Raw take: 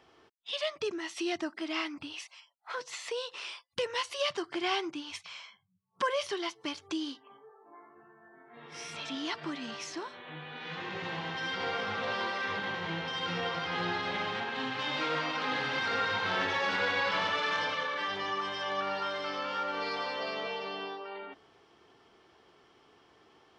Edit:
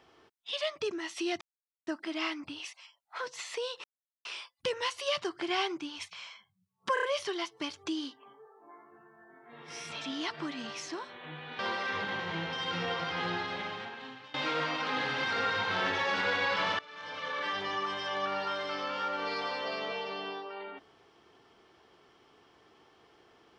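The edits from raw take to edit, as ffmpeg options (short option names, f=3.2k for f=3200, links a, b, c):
-filter_complex "[0:a]asplit=9[a][b][c][d][e][f][g][h][i];[a]atrim=end=1.41,asetpts=PTS-STARTPTS,afade=t=out:st=1.406:d=0.004:c=hsin,apad=pad_dur=0.46[j];[b]atrim=start=1.41:end=3.38,asetpts=PTS-STARTPTS,afade=t=in:d=0.004:c=hsin,afade=t=out:st=1.966:d=0.004:c=hsin,apad=pad_dur=0.41[k];[c]atrim=start=3.38:end=6.102,asetpts=PTS-STARTPTS,afade=t=in:d=0.004:c=hsin[l];[d]atrim=start=6.068:end=6.102[m];[e]atrim=start=6.068:end=6.102[n];[f]atrim=start=6.068:end=10.632[o];[g]atrim=start=12.138:end=14.89,asetpts=PTS-STARTPTS,afade=t=out:st=1.582:d=1.17:silence=0.0944061[p];[h]atrim=start=14.89:end=17.34,asetpts=PTS-STARTPTS,afade=t=in:d=0.004:c=hsin:silence=0.0944061,afade=t=out:st=2.446:d=0.004:c=hsin:silence=0.0944061[q];[i]atrim=start=17.34,asetpts=PTS-STARTPTS,afade=t=in:d=0.6:c=qua:silence=0.0944061[r];[j][k][l]concat=n=3:v=0:a=1[s];[s][m]acrossfade=d=0.004:c1=hsin:c2=hsin[t];[t][n]acrossfade=d=0.004:c1=hsin:c2=hsin[u];[u][o]acrossfade=d=0.004:c1=hsin:c2=hsin[v];[p][q][r]concat=n=3:v=0:a=1[w];[v][w]acrossfade=d=0.004:c1=hsin:c2=hsin"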